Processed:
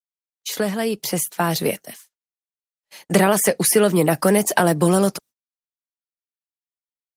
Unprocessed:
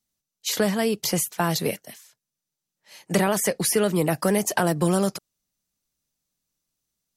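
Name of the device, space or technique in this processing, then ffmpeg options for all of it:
video call: -af "highpass=140,dynaudnorm=framelen=240:gausssize=13:maxgain=11.5dB,agate=range=-34dB:threshold=-42dB:ratio=16:detection=peak" -ar 48000 -c:a libopus -b:a 32k

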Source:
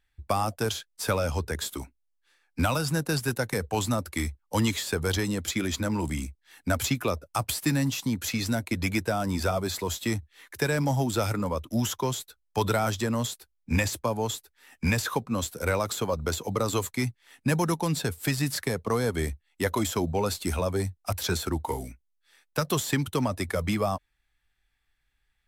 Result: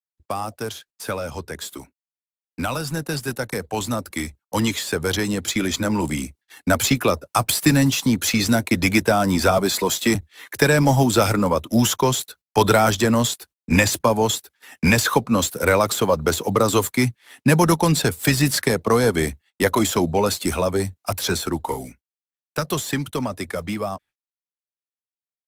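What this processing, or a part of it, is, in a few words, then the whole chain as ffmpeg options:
video call: -filter_complex "[0:a]asettb=1/sr,asplit=3[link_01][link_02][link_03];[link_01]atrim=end=9.584[link_04];[link_02]atrim=start=9.58:end=10.15,asetpts=PTS-STARTPTS,afade=type=in:duration=0.004:curve=qsin,afade=type=out:start_time=0.566:duration=0.004:curve=qsin,highpass=frequency=130:width=0.5412,highpass=frequency=130:width=1.3066[link_05];[link_03]atrim=start=10.146[link_06];[link_04][link_05]acrossfade=duration=0.004:curve1=hsin:curve2=qsin[link_07];[link_07][link_06]acrossfade=duration=0.004:curve1=qsin:curve2=hsin,highpass=120,dynaudnorm=framelen=860:gausssize=13:maxgain=13dB,agate=range=-45dB:threshold=-47dB:ratio=16:detection=peak" -ar 48000 -c:a libopus -b:a 24k

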